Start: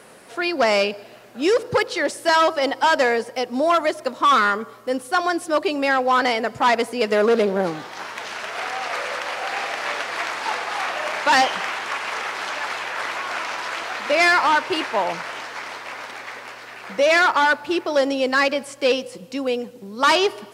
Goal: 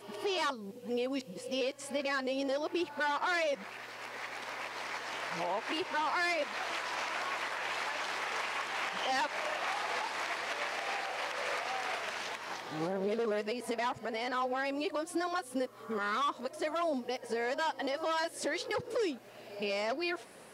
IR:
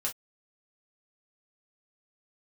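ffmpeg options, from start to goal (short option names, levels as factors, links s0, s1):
-filter_complex "[0:a]areverse,equalizer=f=1400:t=o:w=0.39:g=-3,alimiter=limit=0.119:level=0:latency=1:release=197,asplit=2[s0][s1];[1:a]atrim=start_sample=2205[s2];[s1][s2]afir=irnorm=-1:irlink=0,volume=0.0708[s3];[s0][s3]amix=inputs=2:normalize=0,volume=0.447"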